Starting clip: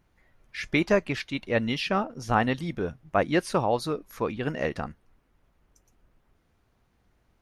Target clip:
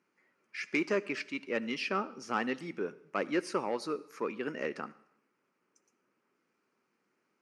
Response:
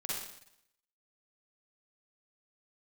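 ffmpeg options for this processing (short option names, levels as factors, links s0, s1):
-filter_complex "[0:a]asoftclip=type=tanh:threshold=0.158,highpass=f=210:w=0.5412,highpass=f=210:w=1.3066,equalizer=f=390:t=q:w=4:g=4,equalizer=f=700:t=q:w=4:g=-8,equalizer=f=1300:t=q:w=4:g=5,equalizer=f=2400:t=q:w=4:g=5,equalizer=f=3600:t=q:w=4:g=-9,equalizer=f=5100:t=q:w=4:g=3,lowpass=f=9400:w=0.5412,lowpass=f=9400:w=1.3066,asplit=2[s0][s1];[1:a]atrim=start_sample=2205,adelay=20[s2];[s1][s2]afir=irnorm=-1:irlink=0,volume=0.0944[s3];[s0][s3]amix=inputs=2:normalize=0,volume=0.501"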